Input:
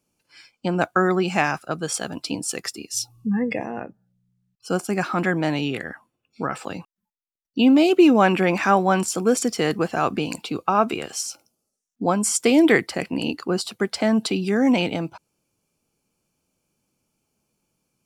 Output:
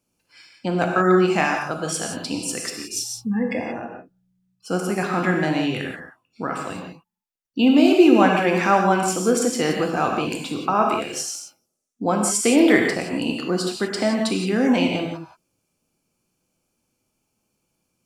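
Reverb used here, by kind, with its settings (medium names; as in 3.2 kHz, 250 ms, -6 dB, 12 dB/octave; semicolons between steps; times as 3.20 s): gated-style reverb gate 200 ms flat, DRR 1 dB; trim -1.5 dB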